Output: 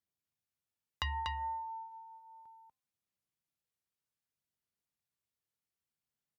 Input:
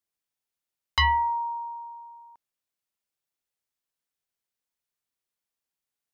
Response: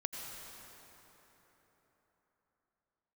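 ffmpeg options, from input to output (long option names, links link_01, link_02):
-af "highpass=81,bass=frequency=250:gain=11,treble=frequency=4000:gain=-1,bandreject=frequency=270.4:width_type=h:width=4,bandreject=frequency=540.8:width_type=h:width=4,bandreject=frequency=811.2:width_type=h:width=4,bandreject=frequency=1081.6:width_type=h:width=4,bandreject=frequency=1352:width_type=h:width=4,bandreject=frequency=1622.4:width_type=h:width=4,bandreject=frequency=1892.8:width_type=h:width=4,bandreject=frequency=2163.2:width_type=h:width=4,bandreject=frequency=2433.6:width_type=h:width=4,bandreject=frequency=2704:width_type=h:width=4,acompressor=threshold=-28dB:ratio=10,aphaser=in_gain=1:out_gain=1:delay=2.2:decay=0.24:speed=0.67:type=sinusoidal,aecho=1:1:232:0.596,asetrate=42336,aresample=44100,volume=-7dB"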